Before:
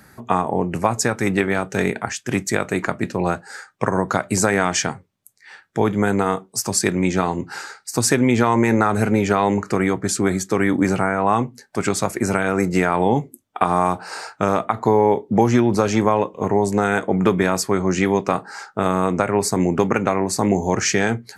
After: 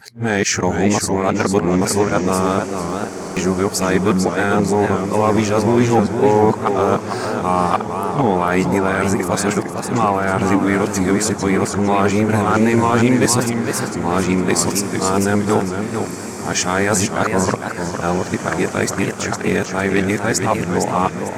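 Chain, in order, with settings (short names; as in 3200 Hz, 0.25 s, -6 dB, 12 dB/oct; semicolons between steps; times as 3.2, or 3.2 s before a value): whole clip reversed; sample leveller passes 1; diffused feedback echo 1.679 s, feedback 49%, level -12.5 dB; stuck buffer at 2.67, samples 2048, times 14; warbling echo 0.453 s, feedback 33%, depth 158 cents, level -6.5 dB; gain -1.5 dB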